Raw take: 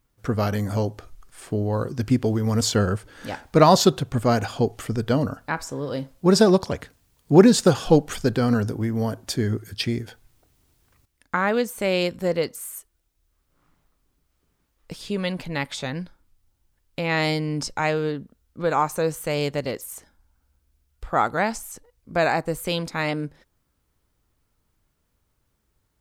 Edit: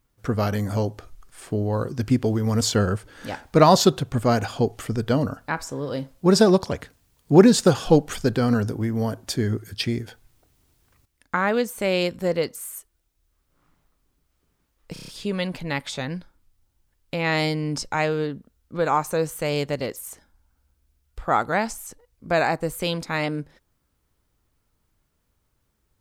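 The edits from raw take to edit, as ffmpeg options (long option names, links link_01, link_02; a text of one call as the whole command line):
ffmpeg -i in.wav -filter_complex "[0:a]asplit=6[link_01][link_02][link_03][link_04][link_05][link_06];[link_01]atrim=end=14.962[link_07];[link_02]atrim=start=14.928:end=14.962[link_08];[link_03]atrim=start=14.928:end=14.962[link_09];[link_04]atrim=start=14.928:end=14.962[link_10];[link_05]atrim=start=14.928:end=14.962[link_11];[link_06]atrim=start=14.928[link_12];[link_07][link_08]acrossfade=duration=0.004:curve1=hsin:curve2=hsin[link_13];[link_13][link_09]acrossfade=duration=0.004:curve1=hsin:curve2=hsin[link_14];[link_14][link_10]acrossfade=duration=0.004:curve1=hsin:curve2=hsin[link_15];[link_15][link_11]acrossfade=duration=0.004:curve1=hsin:curve2=hsin[link_16];[link_16][link_12]acrossfade=duration=0.004:curve1=hsin:curve2=hsin" out.wav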